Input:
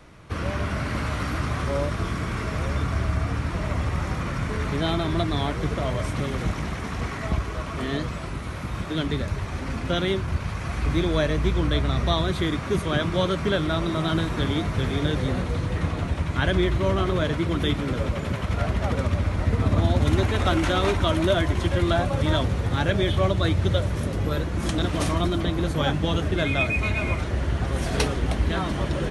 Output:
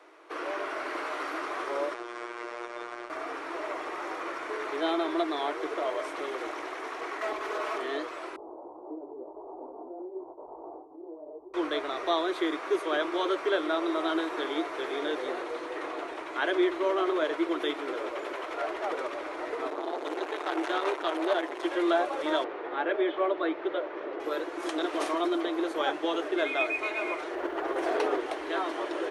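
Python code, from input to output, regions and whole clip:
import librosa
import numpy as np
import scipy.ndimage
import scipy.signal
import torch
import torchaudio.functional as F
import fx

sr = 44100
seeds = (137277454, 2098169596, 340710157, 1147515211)

y = fx.chain(x, sr, fx.steep_lowpass(hz=9600.0, slope=72),
    fx.robotise(hz=119.0),
    fx.transformer_sat(knee_hz=140.0), at=(1.94, 3.1))
y = fx.chain(y, sr, fx.lower_of_two(delay_ms=4.7),
    fx.env_flatten(amount_pct=50), at=(7.21, 7.78))
y = fx.chain(y, sr, fx.over_compress(threshold_db=-29.0, ratio=-1.0),
    fx.ellip_lowpass(hz=890.0, order=4, stop_db=50),
    fx.detune_double(cents=32), at=(8.36, 11.54))
y = fx.chain(y, sr, fx.low_shelf(hz=150.0, db=-7.5),
    fx.transformer_sat(knee_hz=890.0), at=(19.7, 21.63))
y = fx.chain(y, sr, fx.bandpass_edges(low_hz=110.0, high_hz=2900.0),
    fx.air_absorb(metres=110.0), at=(22.44, 24.2))
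y = fx.chain(y, sr, fx.high_shelf(hz=2600.0, db=-11.5),
    fx.quant_float(bits=6),
    fx.env_flatten(amount_pct=100), at=(27.35, 28.2))
y = scipy.signal.sosfilt(scipy.signal.ellip(4, 1.0, 40, 330.0, 'highpass', fs=sr, output='sos'), y)
y = fx.high_shelf(y, sr, hz=3100.0, db=-10.0)
y = fx.notch(y, sr, hz=550.0, q=16.0)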